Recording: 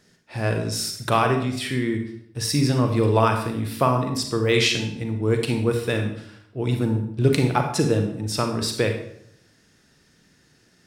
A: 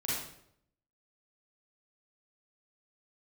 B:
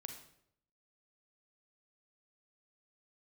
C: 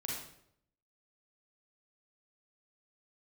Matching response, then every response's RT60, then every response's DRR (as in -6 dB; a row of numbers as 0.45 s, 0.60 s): B; 0.70 s, 0.70 s, 0.70 s; -8.5 dB, 4.5 dB, -4.0 dB